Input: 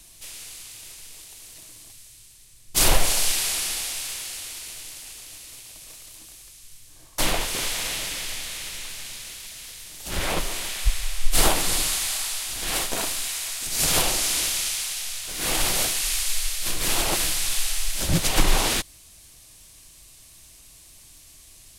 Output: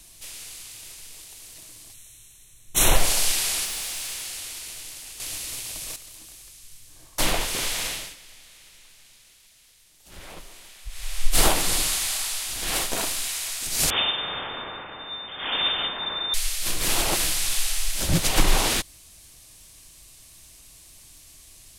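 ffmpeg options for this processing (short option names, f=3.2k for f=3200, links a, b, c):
-filter_complex "[0:a]asettb=1/sr,asplit=3[a][b][c];[a]atrim=end=1.944[d];[b]atrim=start=1.94:end=2.96,asetpts=PTS-STARTPTS,afade=t=in:d=0.004:c=qsin,afade=t=out:st=1.016:d=0.004:c=qsin,asuperstop=centerf=4800:order=20:qfactor=4.2[e];[c]atrim=start=2.956[f];[d][e]acrossfade=d=0.004:c1=hsin:c2=qsin[g];[g][f]acrossfade=d=0.004:c1=qsin:c2=hsin,asettb=1/sr,asplit=3[h][i][j];[h]atrim=end=3.654[k];[i]atrim=start=3.65:end=4.37,asetpts=PTS-STARTPTS,afade=t=in:d=0.004:c=qsin,afade=t=out:st=0.716:d=0.004:c=qsin,asoftclip=type=hard:threshold=-27.5dB[l];[j]atrim=start=4.366[m];[k][l]acrossfade=d=0.004:c1=hsin:c2=qsin[n];[n][m]acrossfade=d=0.004:c1=qsin:c2=hsin,asettb=1/sr,asplit=3[o][p][q];[o]atrim=end=13.904[r];[p]atrim=start=13.9:end=16.34,asetpts=PTS-STARTPTS,afade=t=in:d=0.004:c=qsin,afade=t=out:st=2.436:d=0.004:c=qsin,lowpass=f=3.1k:t=q:w=0.5098,lowpass=f=3.1k:t=q:w=0.6013,lowpass=f=3.1k:t=q:w=0.9,lowpass=f=3.1k:t=q:w=2.563,afreqshift=-3600[s];[q]atrim=start=16.336[t];[r][s]acrossfade=d=0.004:c1=hsin:c2=qsin[u];[u][t]acrossfade=d=0.004:c1=qsin:c2=hsin,asplit=5[v][w][x][y][z];[v]atrim=end=5.202[aa];[w]atrim=start=5.198:end=5.962,asetpts=PTS-STARTPTS,volume=9dB[ab];[x]atrim=start=5.958:end=8.16,asetpts=PTS-STARTPTS,afade=t=out:st=1.892:d=0.31:silence=0.149624[ac];[y]atrim=start=8.16:end=10.89,asetpts=PTS-STARTPTS,volume=-16.5dB[ad];[z]atrim=start=10.89,asetpts=PTS-STARTPTS,afade=t=in:d=0.31:silence=0.149624[ae];[aa][ab]acrossfade=d=0.004:c1=hsin:c2=hsin[af];[ac][ad][ae]concat=n=3:v=0:a=1[ag];[af][ag]acrossfade=d=0.004:c1=hsin:c2=hsin"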